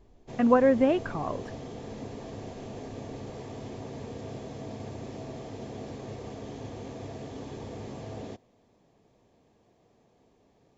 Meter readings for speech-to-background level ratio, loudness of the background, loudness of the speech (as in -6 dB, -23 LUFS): 16.5 dB, -41.0 LUFS, -24.5 LUFS